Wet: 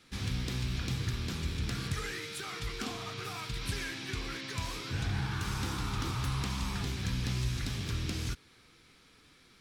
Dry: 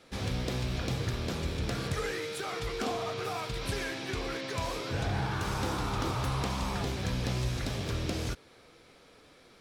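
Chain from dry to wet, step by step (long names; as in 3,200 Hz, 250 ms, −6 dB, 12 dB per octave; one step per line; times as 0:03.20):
parametric band 590 Hz −15 dB 1.2 octaves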